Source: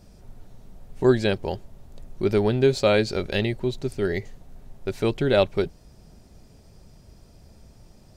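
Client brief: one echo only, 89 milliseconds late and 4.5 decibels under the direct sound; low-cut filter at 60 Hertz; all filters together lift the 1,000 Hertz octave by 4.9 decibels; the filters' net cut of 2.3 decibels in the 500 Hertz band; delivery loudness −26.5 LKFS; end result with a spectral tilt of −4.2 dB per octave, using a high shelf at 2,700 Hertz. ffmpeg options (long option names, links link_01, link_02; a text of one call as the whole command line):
ffmpeg -i in.wav -af "highpass=60,equalizer=frequency=500:width_type=o:gain=-5,equalizer=frequency=1000:width_type=o:gain=8,highshelf=frequency=2700:gain=4,aecho=1:1:89:0.596,volume=-3.5dB" out.wav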